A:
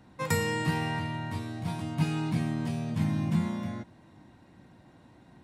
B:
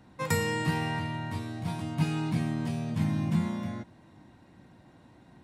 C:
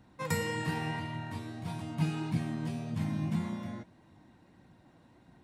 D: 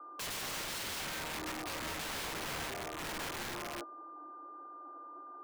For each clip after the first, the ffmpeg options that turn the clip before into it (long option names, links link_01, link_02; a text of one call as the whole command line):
ffmpeg -i in.wav -af anull out.wav
ffmpeg -i in.wav -af "flanger=delay=0.1:depth=6.6:regen=68:speed=1.7:shape=triangular" out.wav
ffmpeg -i in.wav -af "aeval=exprs='val(0)+0.002*sin(2*PI*1200*n/s)':channel_layout=same,asuperpass=centerf=670:order=20:qfactor=0.55,aeval=exprs='(mod(126*val(0)+1,2)-1)/126':channel_layout=same,volume=7dB" out.wav